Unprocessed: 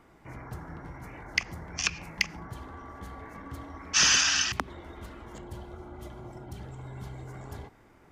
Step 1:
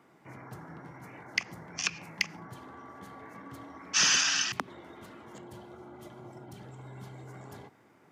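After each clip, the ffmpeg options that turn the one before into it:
ffmpeg -i in.wav -af "highpass=frequency=120:width=0.5412,highpass=frequency=120:width=1.3066,volume=-2.5dB" out.wav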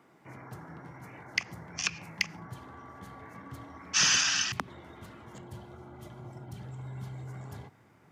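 ffmpeg -i in.wav -af "asubboost=boost=3.5:cutoff=150" out.wav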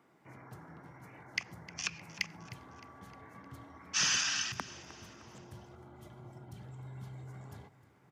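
ffmpeg -i in.wav -af "aecho=1:1:308|616|924|1232:0.126|0.0629|0.0315|0.0157,volume=-5.5dB" out.wav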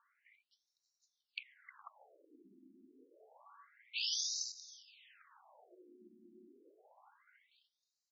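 ffmpeg -i in.wav -af "afftfilt=real='re*between(b*sr/1024,270*pow(5400/270,0.5+0.5*sin(2*PI*0.28*pts/sr))/1.41,270*pow(5400/270,0.5+0.5*sin(2*PI*0.28*pts/sr))*1.41)':imag='im*between(b*sr/1024,270*pow(5400/270,0.5+0.5*sin(2*PI*0.28*pts/sr))/1.41,270*pow(5400/270,0.5+0.5*sin(2*PI*0.28*pts/sr))*1.41)':win_size=1024:overlap=0.75,volume=-3dB" out.wav

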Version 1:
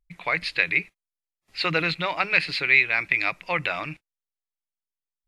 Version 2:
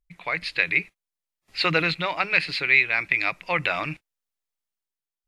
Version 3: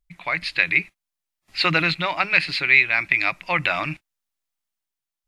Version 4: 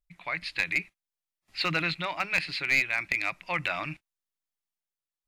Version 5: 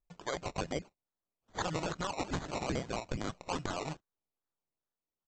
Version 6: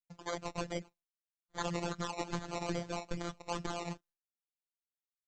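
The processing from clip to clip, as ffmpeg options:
ffmpeg -i in.wav -af "dynaudnorm=framelen=120:gausssize=9:maxgain=7.5dB,volume=-3dB" out.wav
ffmpeg -i in.wav -af "equalizer=frequency=460:width=5.1:gain=-10.5,volume=3dB" out.wav
ffmpeg -i in.wav -af "aeval=exprs='clip(val(0),-1,0.282)':channel_layout=same,volume=-8dB" out.wav
ffmpeg -i in.wav -af "aresample=16000,acrusher=samples=8:mix=1:aa=0.000001:lfo=1:lforange=4.8:lforate=2.4,aresample=44100,acompressor=threshold=-30dB:ratio=6,volume=-1.5dB" out.wav
ffmpeg -i in.wav -af "afftfilt=real='hypot(re,im)*cos(PI*b)':imag='0':win_size=1024:overlap=0.75,agate=range=-33dB:threshold=-60dB:ratio=3:detection=peak,volume=1.5dB" out.wav

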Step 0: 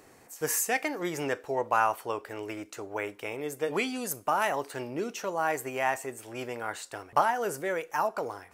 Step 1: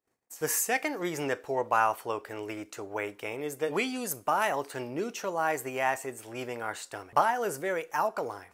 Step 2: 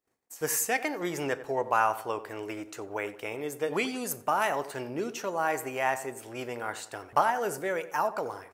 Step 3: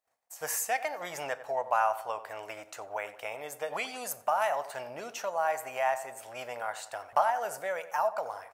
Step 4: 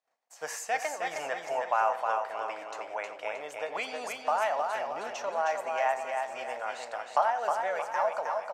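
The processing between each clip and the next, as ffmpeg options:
ffmpeg -i in.wav -af "agate=range=-36dB:threshold=-52dB:ratio=16:detection=peak" out.wav
ffmpeg -i in.wav -filter_complex "[0:a]asplit=2[link_01][link_02];[link_02]adelay=91,lowpass=frequency=1900:poles=1,volume=-14dB,asplit=2[link_03][link_04];[link_04]adelay=91,lowpass=frequency=1900:poles=1,volume=0.47,asplit=2[link_05][link_06];[link_06]adelay=91,lowpass=frequency=1900:poles=1,volume=0.47,asplit=2[link_07][link_08];[link_08]adelay=91,lowpass=frequency=1900:poles=1,volume=0.47[link_09];[link_01][link_03][link_05][link_07][link_09]amix=inputs=5:normalize=0" out.wav
ffmpeg -i in.wav -filter_complex "[0:a]lowshelf=frequency=480:width_type=q:width=3:gain=-9.5,asplit=2[link_01][link_02];[link_02]acompressor=threshold=-33dB:ratio=6,volume=-1dB[link_03];[link_01][link_03]amix=inputs=2:normalize=0,volume=-6.5dB" out.wav
ffmpeg -i in.wav -filter_complex "[0:a]acrossover=split=170 7000:gain=0.0631 1 0.1[link_01][link_02][link_03];[link_01][link_02][link_03]amix=inputs=3:normalize=0,asplit=2[link_04][link_05];[link_05]aecho=0:1:313|626|939|1252|1565:0.596|0.25|0.105|0.0441|0.0185[link_06];[link_04][link_06]amix=inputs=2:normalize=0" out.wav

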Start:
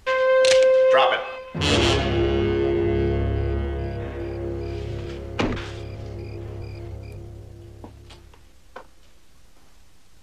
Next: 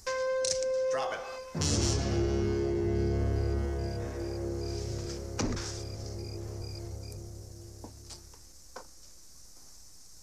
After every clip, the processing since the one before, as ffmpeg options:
ffmpeg -i in.wav -filter_complex "[0:a]highshelf=frequency=4200:width_type=q:width=3:gain=10.5,acrossover=split=260[link_01][link_02];[link_02]acompressor=threshold=-27dB:ratio=3[link_03];[link_01][link_03]amix=inputs=2:normalize=0,volume=-5.5dB" out.wav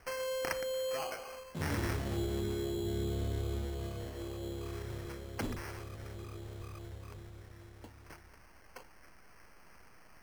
ffmpeg -i in.wav -af "acrusher=samples=12:mix=1:aa=0.000001,volume=-6dB" out.wav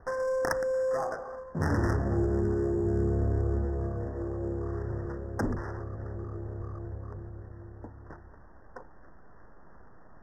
ffmpeg -i in.wav -af "adynamicsmooth=sensitivity=6:basefreq=1300,asuperstop=centerf=3100:order=20:qfactor=0.99,volume=8dB" out.wav

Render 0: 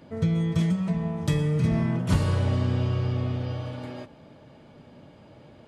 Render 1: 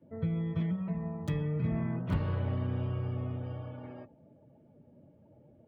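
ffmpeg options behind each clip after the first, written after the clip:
ffmpeg -i in.wav -filter_complex "[0:a]afftdn=noise_reduction=17:noise_floor=-47,acrossover=split=170|630|3300[link_01][link_02][link_03][link_04];[link_04]acrusher=bits=4:mix=0:aa=0.5[link_05];[link_01][link_02][link_03][link_05]amix=inputs=4:normalize=0,volume=-8dB" out.wav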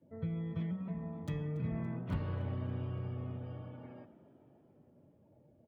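ffmpeg -i in.wav -filter_complex "[0:a]bandreject=frequency=205.9:width_type=h:width=4,bandreject=frequency=411.8:width_type=h:width=4,bandreject=frequency=617.7:width_type=h:width=4,bandreject=frequency=823.6:width_type=h:width=4,bandreject=frequency=1029.5:width_type=h:width=4,bandreject=frequency=1235.4:width_type=h:width=4,bandreject=frequency=1441.3:width_type=h:width=4,bandreject=frequency=1647.2:width_type=h:width=4,bandreject=frequency=1853.1:width_type=h:width=4,bandreject=frequency=2059:width_type=h:width=4,bandreject=frequency=2264.9:width_type=h:width=4,bandreject=frequency=2470.8:width_type=h:width=4,bandreject=frequency=2676.7:width_type=h:width=4,bandreject=frequency=2882.6:width_type=h:width=4,bandreject=frequency=3088.5:width_type=h:width=4,bandreject=frequency=3294.4:width_type=h:width=4,bandreject=frequency=3500.3:width_type=h:width=4,bandreject=frequency=3706.2:width_type=h:width=4,bandreject=frequency=3912.1:width_type=h:width=4,bandreject=frequency=4118:width_type=h:width=4,bandreject=frequency=4323.9:width_type=h:width=4,bandreject=frequency=4529.8:width_type=h:width=4,bandreject=frequency=4735.7:width_type=h:width=4,bandreject=frequency=4941.6:width_type=h:width=4,bandreject=frequency=5147.5:width_type=h:width=4,bandreject=frequency=5353.4:width_type=h:width=4,bandreject=frequency=5559.3:width_type=h:width=4,bandreject=frequency=5765.2:width_type=h:width=4,bandreject=frequency=5971.1:width_type=h:width=4,bandreject=frequency=6177:width_type=h:width=4,bandreject=frequency=6382.9:width_type=h:width=4,bandreject=frequency=6588.8:width_type=h:width=4,bandreject=frequency=6794.7:width_type=h:width=4,bandreject=frequency=7000.6:width_type=h:width=4,asplit=7[link_01][link_02][link_03][link_04][link_05][link_06][link_07];[link_02]adelay=283,afreqshift=48,volume=-18.5dB[link_08];[link_03]adelay=566,afreqshift=96,volume=-22.8dB[link_09];[link_04]adelay=849,afreqshift=144,volume=-27.1dB[link_10];[link_05]adelay=1132,afreqshift=192,volume=-31.4dB[link_11];[link_06]adelay=1415,afreqshift=240,volume=-35.7dB[link_12];[link_07]adelay=1698,afreqshift=288,volume=-40dB[link_13];[link_01][link_08][link_09][link_10][link_11][link_12][link_13]amix=inputs=7:normalize=0,volume=-5.5dB" out.wav

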